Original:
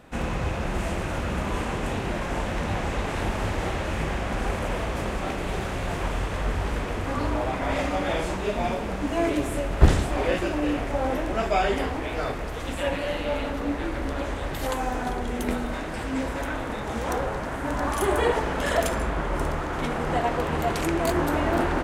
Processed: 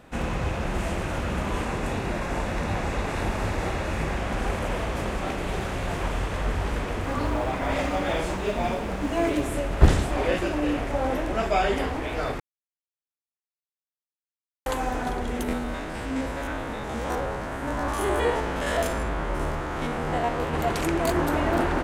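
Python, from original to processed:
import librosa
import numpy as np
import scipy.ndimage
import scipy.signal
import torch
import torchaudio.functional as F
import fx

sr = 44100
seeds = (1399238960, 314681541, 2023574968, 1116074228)

y = fx.notch(x, sr, hz=3100.0, q=12.0, at=(1.64, 4.17))
y = fx.quant_companded(y, sr, bits=8, at=(7.02, 9.41))
y = fx.spec_steps(y, sr, hold_ms=50, at=(15.43, 20.54))
y = fx.edit(y, sr, fx.silence(start_s=12.4, length_s=2.26), tone=tone)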